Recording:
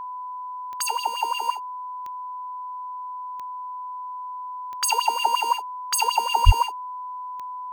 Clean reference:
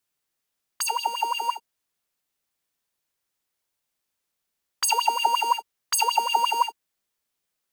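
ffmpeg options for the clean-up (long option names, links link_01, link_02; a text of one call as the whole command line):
ffmpeg -i in.wav -filter_complex "[0:a]adeclick=threshold=4,bandreject=frequency=1000:width=30,asplit=3[link_01][link_02][link_03];[link_01]afade=type=out:start_time=6.45:duration=0.02[link_04];[link_02]highpass=frequency=140:width=0.5412,highpass=frequency=140:width=1.3066,afade=type=in:start_time=6.45:duration=0.02,afade=type=out:start_time=6.57:duration=0.02[link_05];[link_03]afade=type=in:start_time=6.57:duration=0.02[link_06];[link_04][link_05][link_06]amix=inputs=3:normalize=0" out.wav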